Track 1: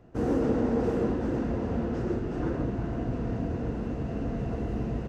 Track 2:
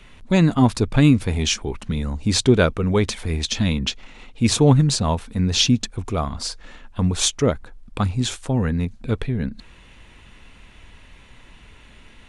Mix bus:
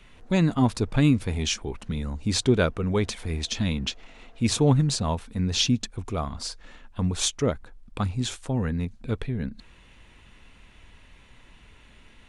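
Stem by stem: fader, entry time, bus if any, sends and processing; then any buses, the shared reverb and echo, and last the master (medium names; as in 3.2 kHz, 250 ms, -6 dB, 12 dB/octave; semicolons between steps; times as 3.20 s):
2.51 s -17.5 dB -> 3.08 s -7 dB, 0.00 s, no send, high-pass 690 Hz 12 dB/octave; auto duck -8 dB, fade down 0.30 s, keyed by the second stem
-5.5 dB, 0.00 s, no send, none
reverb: none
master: none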